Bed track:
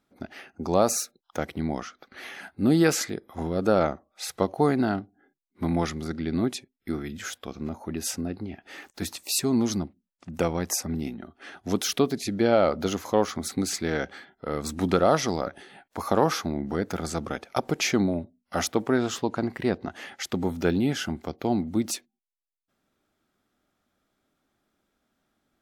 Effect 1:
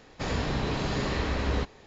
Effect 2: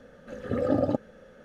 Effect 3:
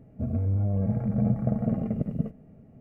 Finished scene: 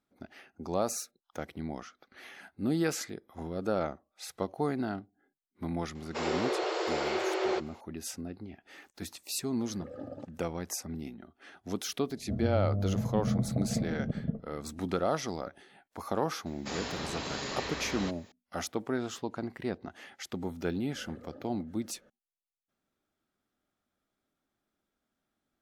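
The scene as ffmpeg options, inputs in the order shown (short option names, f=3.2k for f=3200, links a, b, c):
-filter_complex "[1:a]asplit=2[a][b];[2:a]asplit=2[c][d];[0:a]volume=-9dB[e];[a]afreqshift=310[f];[3:a]lowpass=1.1k[g];[b]aemphasis=mode=production:type=bsi[h];[d]acompressor=threshold=-35dB:ratio=6:attack=3.2:release=140:knee=1:detection=peak[i];[f]atrim=end=1.86,asetpts=PTS-STARTPTS,volume=-3dB,afade=t=in:d=0.004:c=hsin,afade=t=out:st=1.856:d=0.004:c=hsin,adelay=5950[j];[c]atrim=end=1.44,asetpts=PTS-STARTPTS,volume=-18dB,afade=t=in:d=0.004:c=hsin,afade=t=out:st=1.436:d=0.004:c=hsin,adelay=9290[k];[g]atrim=end=2.8,asetpts=PTS-STARTPTS,volume=-5dB,afade=t=in:d=0.004:c=hsin,afade=t=out:st=2.796:d=0.004:c=hsin,adelay=12090[l];[h]atrim=end=1.86,asetpts=PTS-STARTPTS,volume=-6dB,afade=t=in:d=0.004:c=hsin,afade=t=out:st=1.856:d=0.004:c=hsin,adelay=16460[m];[i]atrim=end=1.44,asetpts=PTS-STARTPTS,volume=-12dB,afade=t=in:d=0.004:c=hsin,afade=t=out:st=1.436:d=0.004:c=hsin,adelay=20660[n];[e][j][k][l][m][n]amix=inputs=6:normalize=0"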